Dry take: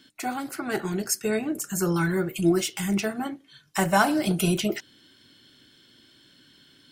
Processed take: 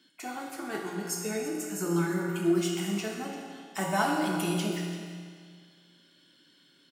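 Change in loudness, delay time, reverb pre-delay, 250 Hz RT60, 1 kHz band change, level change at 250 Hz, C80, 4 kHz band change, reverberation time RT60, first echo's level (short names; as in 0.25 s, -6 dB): -5.0 dB, 0.34 s, 4 ms, 2.0 s, -4.5 dB, -4.5 dB, 3.0 dB, -5.0 dB, 2.0 s, -15.0 dB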